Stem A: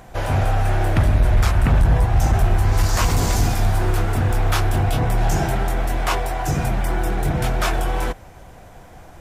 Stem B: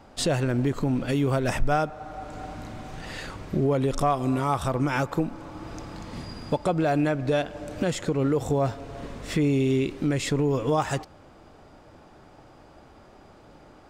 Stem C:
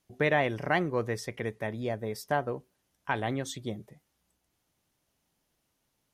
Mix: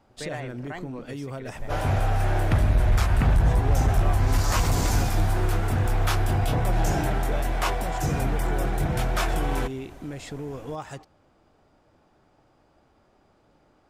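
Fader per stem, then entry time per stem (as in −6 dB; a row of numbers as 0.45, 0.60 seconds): −4.5, −11.0, −11.0 decibels; 1.55, 0.00, 0.00 seconds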